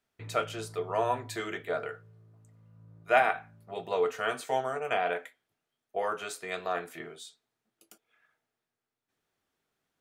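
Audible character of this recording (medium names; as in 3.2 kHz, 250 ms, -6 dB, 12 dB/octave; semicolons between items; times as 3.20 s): noise floor -87 dBFS; spectral tilt -4.0 dB/octave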